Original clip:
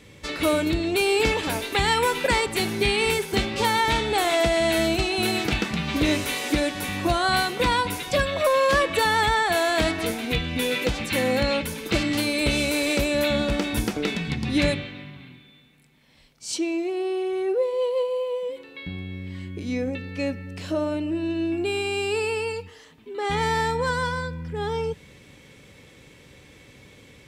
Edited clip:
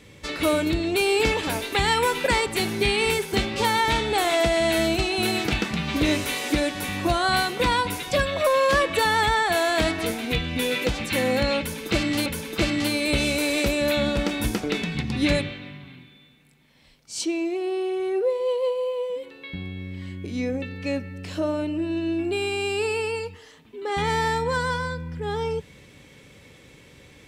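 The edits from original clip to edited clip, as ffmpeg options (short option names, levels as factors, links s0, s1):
-filter_complex "[0:a]asplit=2[s0][s1];[s0]atrim=end=12.262[s2];[s1]atrim=start=11.588[s3];[s2][s3]acrossfade=d=0.004:c1=hsin:c2=hsin"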